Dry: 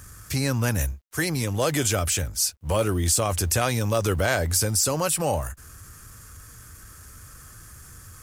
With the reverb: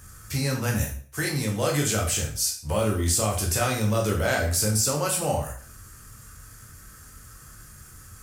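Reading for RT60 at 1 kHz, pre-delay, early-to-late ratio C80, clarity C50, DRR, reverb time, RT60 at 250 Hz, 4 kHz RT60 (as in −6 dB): 0.45 s, 6 ms, 11.5 dB, 7.0 dB, −1.0 dB, 0.45 s, 0.50 s, 0.40 s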